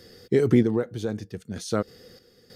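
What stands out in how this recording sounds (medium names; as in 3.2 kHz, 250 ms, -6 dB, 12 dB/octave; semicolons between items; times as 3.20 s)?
random-step tremolo 3.2 Hz, depth 75%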